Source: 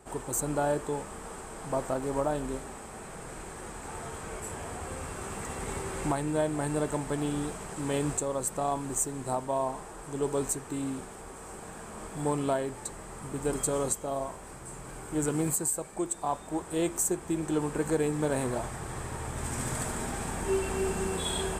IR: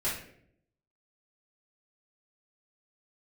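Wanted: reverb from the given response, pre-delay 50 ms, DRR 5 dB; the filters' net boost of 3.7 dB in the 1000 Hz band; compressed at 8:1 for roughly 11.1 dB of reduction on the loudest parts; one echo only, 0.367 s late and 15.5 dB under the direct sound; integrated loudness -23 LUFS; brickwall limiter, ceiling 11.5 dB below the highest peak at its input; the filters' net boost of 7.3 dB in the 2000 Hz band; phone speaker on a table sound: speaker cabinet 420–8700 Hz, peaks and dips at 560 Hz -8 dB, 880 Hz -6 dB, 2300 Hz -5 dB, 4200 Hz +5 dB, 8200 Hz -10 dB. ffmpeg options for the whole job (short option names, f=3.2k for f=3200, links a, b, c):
-filter_complex "[0:a]equalizer=f=1k:t=o:g=7.5,equalizer=f=2k:t=o:g=8.5,acompressor=threshold=-31dB:ratio=8,alimiter=level_in=6.5dB:limit=-24dB:level=0:latency=1,volume=-6.5dB,aecho=1:1:367:0.168,asplit=2[a][b];[1:a]atrim=start_sample=2205,adelay=50[c];[b][c]afir=irnorm=-1:irlink=0,volume=-12dB[d];[a][d]amix=inputs=2:normalize=0,highpass=f=420:w=0.5412,highpass=f=420:w=1.3066,equalizer=f=560:t=q:w=4:g=-8,equalizer=f=880:t=q:w=4:g=-6,equalizer=f=2.3k:t=q:w=4:g=-5,equalizer=f=4.2k:t=q:w=4:g=5,equalizer=f=8.2k:t=q:w=4:g=-10,lowpass=f=8.7k:w=0.5412,lowpass=f=8.7k:w=1.3066,volume=20dB"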